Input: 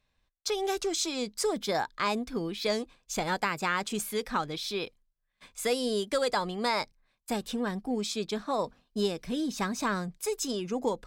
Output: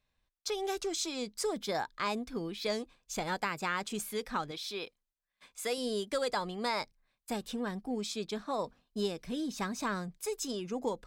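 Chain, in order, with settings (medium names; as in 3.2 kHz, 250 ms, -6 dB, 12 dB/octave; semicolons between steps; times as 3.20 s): 4.51–5.78 s: bass shelf 200 Hz -11 dB; trim -4.5 dB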